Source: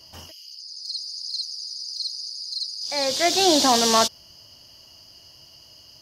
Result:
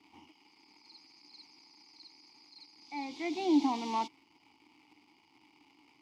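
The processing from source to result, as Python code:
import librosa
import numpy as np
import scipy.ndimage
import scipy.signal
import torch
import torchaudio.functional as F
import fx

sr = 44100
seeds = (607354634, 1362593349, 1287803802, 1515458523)

y = fx.dmg_crackle(x, sr, seeds[0], per_s=500.0, level_db=-32.0)
y = fx.vowel_filter(y, sr, vowel='u')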